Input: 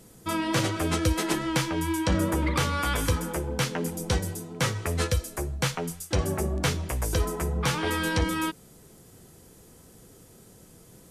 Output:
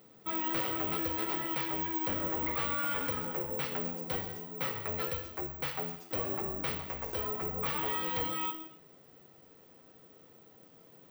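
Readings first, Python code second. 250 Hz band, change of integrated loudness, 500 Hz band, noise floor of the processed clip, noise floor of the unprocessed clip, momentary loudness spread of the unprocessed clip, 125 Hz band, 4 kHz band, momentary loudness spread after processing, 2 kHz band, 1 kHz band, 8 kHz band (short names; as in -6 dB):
-11.0 dB, -5.5 dB, -8.0 dB, -59 dBFS, -53 dBFS, 5 LU, -16.5 dB, -10.0 dB, 5 LU, -8.5 dB, -5.5 dB, -22.0 dB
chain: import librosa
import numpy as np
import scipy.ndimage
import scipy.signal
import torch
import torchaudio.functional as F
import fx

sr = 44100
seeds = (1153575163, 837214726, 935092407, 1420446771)

y = fx.highpass(x, sr, hz=480.0, slope=6)
y = fx.notch(y, sr, hz=1600.0, q=15.0)
y = 10.0 ** (-28.0 / 20.0) * np.tanh(y / 10.0 ** (-28.0 / 20.0))
y = fx.air_absorb(y, sr, metres=230.0)
y = fx.rev_gated(y, sr, seeds[0], gate_ms=300, shape='falling', drr_db=4.0)
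y = (np.kron(y[::2], np.eye(2)[0]) * 2)[:len(y)]
y = y * librosa.db_to_amplitude(-2.0)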